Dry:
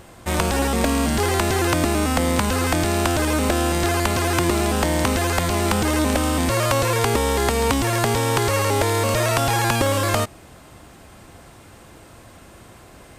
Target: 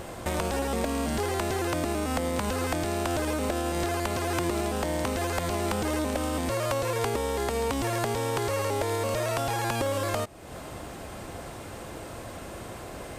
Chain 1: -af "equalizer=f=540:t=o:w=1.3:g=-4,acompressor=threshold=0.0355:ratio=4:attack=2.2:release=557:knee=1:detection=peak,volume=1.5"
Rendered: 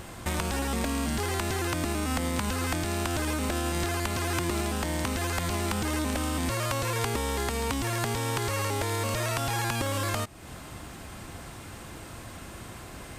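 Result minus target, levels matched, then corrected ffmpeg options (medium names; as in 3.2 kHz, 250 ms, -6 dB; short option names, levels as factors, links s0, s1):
500 Hz band -4.5 dB
-af "equalizer=f=540:t=o:w=1.3:g=5,acompressor=threshold=0.0355:ratio=4:attack=2.2:release=557:knee=1:detection=peak,volume=1.5"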